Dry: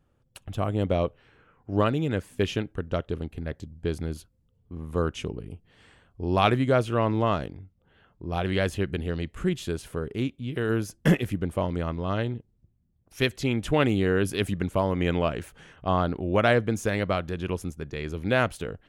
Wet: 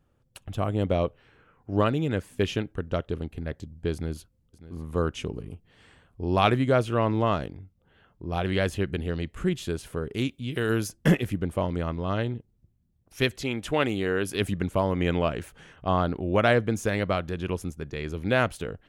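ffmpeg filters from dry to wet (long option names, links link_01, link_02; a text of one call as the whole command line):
ffmpeg -i in.wav -filter_complex "[0:a]asplit=2[link_01][link_02];[link_02]afade=type=in:start_time=3.93:duration=0.01,afade=type=out:start_time=4.94:duration=0.01,aecho=0:1:600|1200:0.158489|0.0316979[link_03];[link_01][link_03]amix=inputs=2:normalize=0,asplit=3[link_04][link_05][link_06];[link_04]afade=type=out:start_time=10.13:duration=0.02[link_07];[link_05]highshelf=frequency=2600:gain=9,afade=type=in:start_time=10.13:duration=0.02,afade=type=out:start_time=10.87:duration=0.02[link_08];[link_06]afade=type=in:start_time=10.87:duration=0.02[link_09];[link_07][link_08][link_09]amix=inputs=3:normalize=0,asettb=1/sr,asplit=3[link_10][link_11][link_12];[link_10]atrim=end=13.424[link_13];[link_11]atrim=start=13.42:end=14.35,asetpts=PTS-STARTPTS,afade=type=in:duration=0.004:curve=qsin,afade=type=out:start_time=0.926:duration=0.004:curve=qsin,lowshelf=frequency=250:gain=-9[link_14];[link_12]atrim=start=14.346[link_15];[link_13][link_14]acrossfade=duration=0.004:curve1=hsin:curve2=qsin[link_16];[link_16][link_15]acrossfade=duration=0.004:curve1=qsin:curve2=hsin" out.wav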